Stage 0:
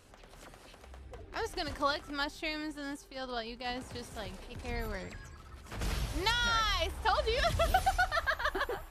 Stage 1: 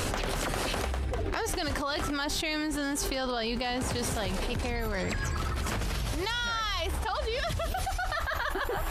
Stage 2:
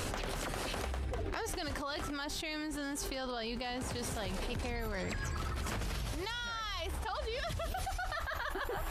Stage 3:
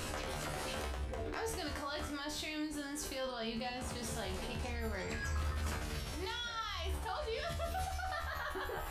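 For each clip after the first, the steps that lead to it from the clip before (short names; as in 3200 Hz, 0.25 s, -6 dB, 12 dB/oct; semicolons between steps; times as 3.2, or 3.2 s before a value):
fast leveller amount 100%; gain -7.5 dB
vocal rider 0.5 s; gain -7 dB
resonator 75 Hz, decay 0.39 s, harmonics all, mix 90%; gain +6.5 dB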